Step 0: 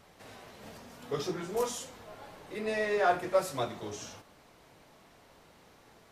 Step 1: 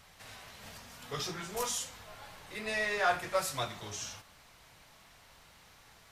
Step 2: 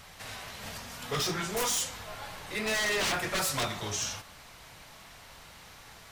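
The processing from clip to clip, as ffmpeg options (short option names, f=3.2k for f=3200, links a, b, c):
-af "equalizer=f=350:w=0.53:g=-14.5,volume=5dB"
-af "aeval=exprs='0.0251*(abs(mod(val(0)/0.0251+3,4)-2)-1)':c=same,volume=8dB"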